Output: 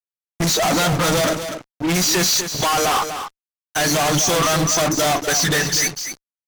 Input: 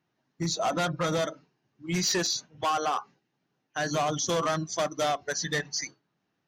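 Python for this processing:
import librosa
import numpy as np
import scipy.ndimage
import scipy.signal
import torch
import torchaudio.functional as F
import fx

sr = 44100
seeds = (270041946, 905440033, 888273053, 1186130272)

p1 = fx.peak_eq(x, sr, hz=12000.0, db=10.5, octaves=1.3)
p2 = fx.fuzz(p1, sr, gain_db=48.0, gate_db=-51.0)
p3 = p2 + fx.echo_single(p2, sr, ms=245, db=-9.0, dry=0)
y = F.gain(torch.from_numpy(p3), -4.0).numpy()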